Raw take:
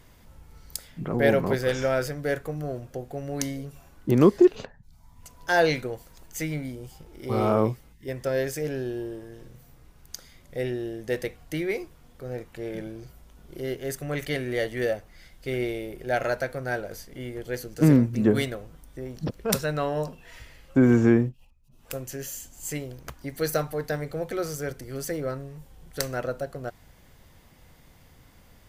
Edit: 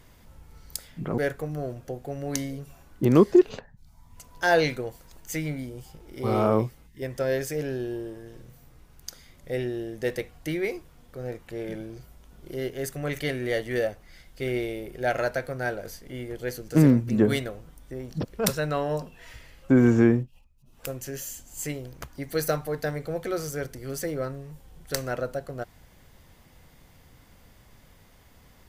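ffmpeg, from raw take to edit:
-filter_complex "[0:a]asplit=2[a][b];[a]atrim=end=1.182[c];[b]atrim=start=2.238[d];[c][d]acrossfade=d=0.004:c1=hsin:c2=hsin"

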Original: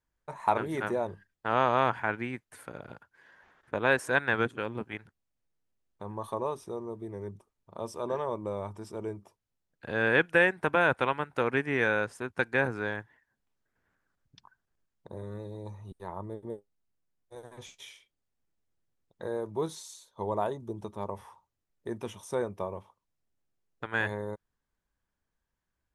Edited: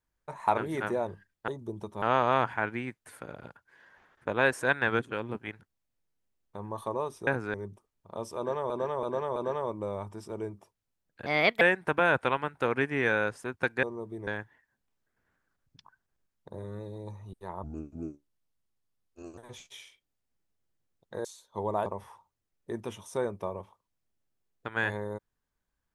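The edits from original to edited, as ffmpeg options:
-filter_complex "[0:a]asplit=16[a][b][c][d][e][f][g][h][i][j][k][l][m][n][o][p];[a]atrim=end=1.482[q];[b]atrim=start=20.488:end=21.032[r];[c]atrim=start=1.478:end=6.732[s];[d]atrim=start=12.588:end=12.862[t];[e]atrim=start=7.168:end=8.332[u];[f]atrim=start=7.998:end=8.332[v];[g]atrim=start=7.998:end=8.332[w];[h]atrim=start=7.998:end=9.904[x];[i]atrim=start=9.9:end=10.37,asetpts=PTS-STARTPTS,asetrate=59094,aresample=44100[y];[j]atrim=start=10.366:end=12.592[z];[k]atrim=start=6.728:end=7.172[aa];[l]atrim=start=12.858:end=16.224[ab];[m]atrim=start=16.22:end=17.46,asetpts=PTS-STARTPTS,asetrate=31311,aresample=44100[ac];[n]atrim=start=17.456:end=19.332[ad];[o]atrim=start=19.878:end=20.492[ae];[p]atrim=start=21.028[af];[q][r]acrossfade=d=0.004:c1=hsin:c2=hsin[ag];[ag][s]acrossfade=d=0.004:c1=hsin:c2=hsin[ah];[ah][t]acrossfade=d=0.004:c1=hsin:c2=hsin[ai];[ai][u]acrossfade=d=0.004:c1=hsin:c2=hsin[aj];[aj][v]acrossfade=d=0.004:c1=hsin:c2=hsin[ak];[ak][w]acrossfade=d=0.004:c1=hsin:c2=hsin[al];[al][x]acrossfade=d=0.004:c1=hsin:c2=hsin[am];[am][y]acrossfade=d=0.004:c1=hsin:c2=hsin[an];[an][z]acrossfade=d=0.004:c1=hsin:c2=hsin[ao];[ao][aa]acrossfade=d=0.004:c1=hsin:c2=hsin[ap];[ap][ab]acrossfade=d=0.004:c1=hsin:c2=hsin[aq];[aq][ac]acrossfade=d=0.004:c1=hsin:c2=hsin[ar];[ar][ad]acrossfade=d=0.004:c1=hsin:c2=hsin[as];[as][ae]acrossfade=d=0.004:c1=hsin:c2=hsin[at];[at][af]acrossfade=d=0.004:c1=hsin:c2=hsin"

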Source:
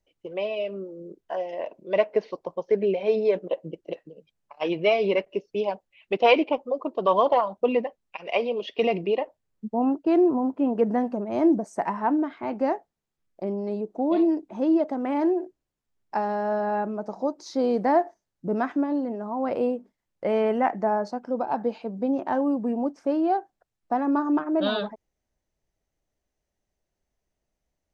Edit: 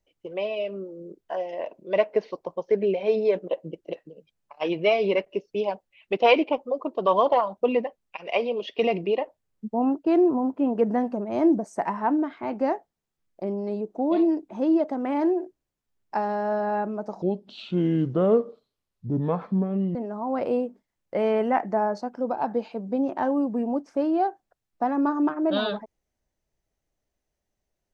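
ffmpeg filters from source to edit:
-filter_complex "[0:a]asplit=3[a][b][c];[a]atrim=end=17.224[d];[b]atrim=start=17.22:end=19.05,asetpts=PTS-STARTPTS,asetrate=29547,aresample=44100,atrim=end_sample=120452,asetpts=PTS-STARTPTS[e];[c]atrim=start=19.046[f];[d][e]acrossfade=d=0.004:c1=hsin:c2=hsin[g];[g][f]acrossfade=d=0.004:c1=hsin:c2=hsin"

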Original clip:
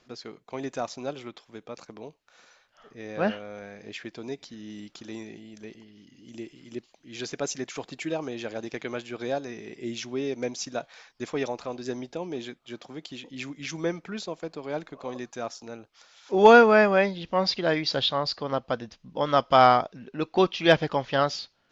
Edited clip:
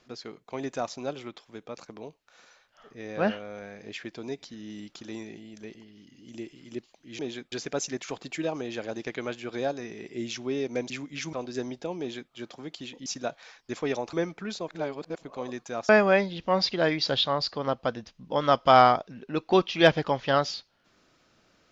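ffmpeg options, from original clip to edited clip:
-filter_complex "[0:a]asplit=10[a][b][c][d][e][f][g][h][i][j];[a]atrim=end=7.192[k];[b]atrim=start=12.298:end=12.632[l];[c]atrim=start=7.188:end=10.572[m];[d]atrim=start=13.368:end=13.802[n];[e]atrim=start=11.638:end=13.372[o];[f]atrim=start=10.568:end=11.642[p];[g]atrim=start=13.798:end=14.352[q];[h]atrim=start=14.348:end=14.902,asetpts=PTS-STARTPTS,areverse[r];[i]atrim=start=14.898:end=15.562[s];[j]atrim=start=16.738[t];[k][l]acrossfade=d=0.004:c1=hsin:c2=hsin[u];[u][m]acrossfade=d=0.004:c1=hsin:c2=hsin[v];[v][n]acrossfade=d=0.004:c1=hsin:c2=hsin[w];[w][o]acrossfade=d=0.004:c1=hsin:c2=hsin[x];[x][p]acrossfade=d=0.004:c1=hsin:c2=hsin[y];[y][q]acrossfade=d=0.004:c1=hsin:c2=hsin[z];[z][r]acrossfade=d=0.004:c1=hsin:c2=hsin[aa];[aa][s]acrossfade=d=0.004:c1=hsin:c2=hsin[ab];[ab][t]acrossfade=d=0.004:c1=hsin:c2=hsin"

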